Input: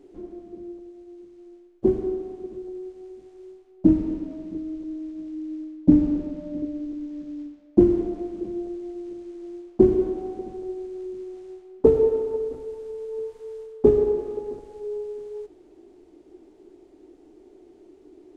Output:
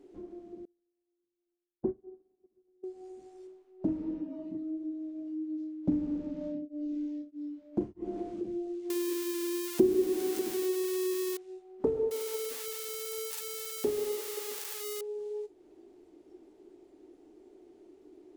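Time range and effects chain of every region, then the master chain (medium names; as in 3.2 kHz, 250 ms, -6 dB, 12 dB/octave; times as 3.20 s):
0.65–2.84 s: low-pass 1.6 kHz + upward expansion 2.5:1, over -38 dBFS
3.47–5.58 s: peaking EQ 680 Hz +4.5 dB 2.6 oct + flange 1.5 Hz, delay 5.9 ms, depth 2.5 ms, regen +69%
6.38–8.34 s: doubling 30 ms -3.5 dB + tremolo of two beating tones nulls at 1.6 Hz
8.90–11.37 s: zero-crossing glitches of -16.5 dBFS + peaking EQ 340 Hz +11 dB 1.3 oct
12.11–15.01 s: zero-crossing glitches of -17.5 dBFS + bass shelf 240 Hz -11 dB
whole clip: spectral noise reduction 10 dB; bass shelf 90 Hz -8.5 dB; compression 2:1, threshold -47 dBFS; trim +5.5 dB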